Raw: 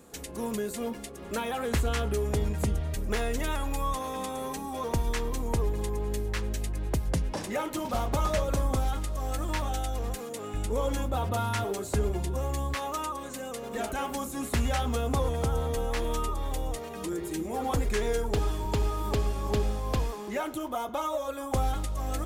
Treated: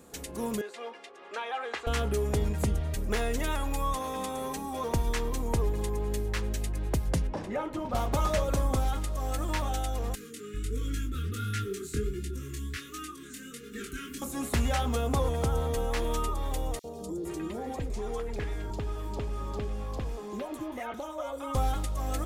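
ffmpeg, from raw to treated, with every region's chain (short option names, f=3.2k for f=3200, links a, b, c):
-filter_complex "[0:a]asettb=1/sr,asplit=3[a][b][c];[a]atrim=end=0.614[d];[b]atrim=start=0.61:end=1.87,asetpts=PTS-STARTPTS,afade=t=in:d=0.004:c=qsin,afade=t=out:st=1.256:d=0.004:c=qsin,highpass=690,lowpass=3.5k,aecho=1:1:2.5:0.34,atrim=end_sample=55566[e];[c]atrim=start=1.866[f];[d][e]acrossfade=d=0.004:c1=hsin:c2=qsin[g];[g][f]acrossfade=d=0.004:c1=qsin:c2=hsin,asettb=1/sr,asplit=3[h][i][j];[h]atrim=end=7.274[k];[i]atrim=start=7.27:end=7.95,asetpts=PTS-STARTPTS,afade=t=in:d=0.004:c=qsin,afade=t=out:st=0.676:d=0.004:c=qsin,lowpass=f=1.3k:p=1,asubboost=boost=7:cutoff=110[l];[j]atrim=start=7.946[m];[k][l]acrossfade=d=0.004:c1=hsin:c2=qsin[n];[n][m]acrossfade=d=0.004:c1=qsin:c2=hsin,asettb=1/sr,asplit=3[o][p][q];[o]atrim=end=10.154[r];[p]atrim=start=10.15:end=14.22,asetpts=PTS-STARTPTS,afade=t=in:d=0.004:c=qsin,afade=t=out:st=4.066:d=0.004:c=qsin,asuperstop=centerf=750:order=12:qfactor=0.89,flanger=delay=18.5:depth=6.1:speed=1.4[s];[q]atrim=start=14.216[t];[r][s]acrossfade=d=0.004:c1=hsin:c2=qsin[u];[u][t]acrossfade=d=0.004:c1=qsin:c2=hsin,asettb=1/sr,asplit=3[v][w][x];[v]atrim=end=16.794[y];[w]atrim=start=16.79:end=21.55,asetpts=PTS-STARTPTS,afade=t=in:d=0.004:c=qsin,afade=t=out:st=4.756:d=0.004:c=qsin,highshelf=f=8.9k:g=-10.5,acompressor=threshold=-31dB:ratio=3:attack=3.2:release=140:knee=1:detection=peak,acrossover=split=900|4000[z][aa][ab];[z]adelay=50[ac];[aa]adelay=460[ad];[ac][ad][ab]amix=inputs=3:normalize=0,atrim=end_sample=209916[ae];[x]atrim=start=21.546[af];[y][ae]acrossfade=d=0.004:c1=hsin:c2=qsin[ag];[ag][af]acrossfade=d=0.004:c1=qsin:c2=hsin"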